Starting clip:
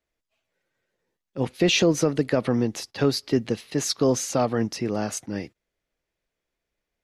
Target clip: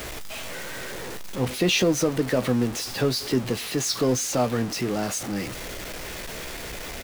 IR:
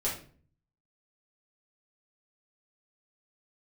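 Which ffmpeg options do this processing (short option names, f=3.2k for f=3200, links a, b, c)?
-filter_complex "[0:a]aeval=exprs='val(0)+0.5*0.0531*sgn(val(0))':c=same,asplit=2[a][b];[b]adelay=16,volume=-10.5dB[c];[a][c]amix=inputs=2:normalize=0,volume=-3dB"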